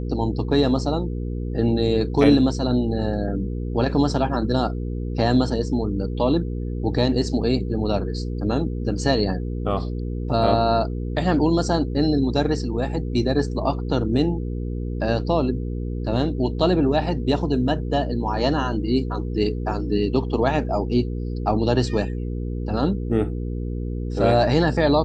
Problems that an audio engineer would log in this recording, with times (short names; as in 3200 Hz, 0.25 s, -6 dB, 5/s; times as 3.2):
hum 60 Hz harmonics 8 -27 dBFS